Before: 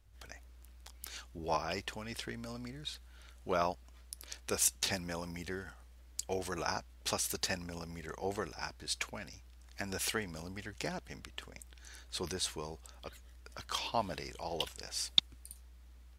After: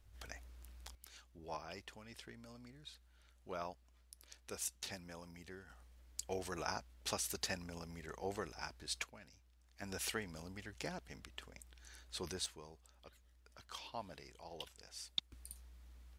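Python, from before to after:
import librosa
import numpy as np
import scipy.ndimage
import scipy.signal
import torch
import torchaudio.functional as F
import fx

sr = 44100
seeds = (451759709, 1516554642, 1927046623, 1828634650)

y = fx.gain(x, sr, db=fx.steps((0.0, 0.0), (0.95, -12.0), (5.7, -5.0), (9.04, -13.0), (9.82, -5.5), (12.46, -12.5), (15.32, -2.0)))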